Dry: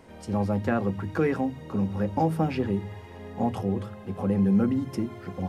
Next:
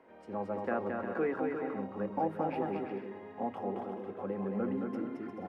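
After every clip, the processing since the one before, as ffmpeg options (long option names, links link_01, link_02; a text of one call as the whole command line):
ffmpeg -i in.wav -filter_complex "[0:a]acrossover=split=250 2500:gain=0.0891 1 0.0891[link_01][link_02][link_03];[link_01][link_02][link_03]amix=inputs=3:normalize=0,asplit=2[link_04][link_05];[link_05]aecho=0:1:220|352|431.2|478.7|507.2:0.631|0.398|0.251|0.158|0.1[link_06];[link_04][link_06]amix=inputs=2:normalize=0,volume=-6dB" out.wav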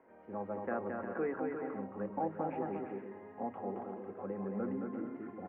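ffmpeg -i in.wav -af "lowpass=frequency=2200:width=0.5412,lowpass=frequency=2200:width=1.3066,volume=-3.5dB" out.wav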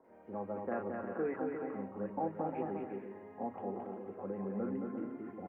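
ffmpeg -i in.wav -filter_complex "[0:a]acrossover=split=1400[link_01][link_02];[link_02]adelay=40[link_03];[link_01][link_03]amix=inputs=2:normalize=0" out.wav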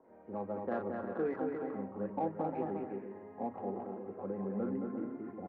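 ffmpeg -i in.wav -af "adynamicsmooth=sensitivity=3.5:basefreq=2300,volume=1.5dB" out.wav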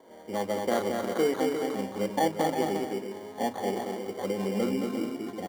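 ffmpeg -i in.wav -filter_complex "[0:a]asplit=2[link_01][link_02];[link_02]acrusher=samples=17:mix=1:aa=0.000001,volume=-3.5dB[link_03];[link_01][link_03]amix=inputs=2:normalize=0,lowshelf=frequency=270:gain=-7.5,volume=7dB" out.wav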